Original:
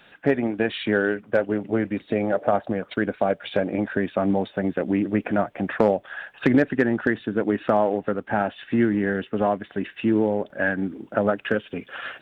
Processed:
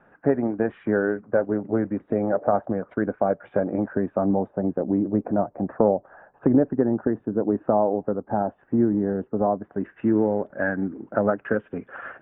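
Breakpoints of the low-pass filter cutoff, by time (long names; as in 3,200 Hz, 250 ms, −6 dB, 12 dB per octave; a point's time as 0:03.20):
low-pass filter 24 dB per octave
0:03.61 1,400 Hz
0:04.77 1,000 Hz
0:09.58 1,000 Hz
0:09.98 1,600 Hz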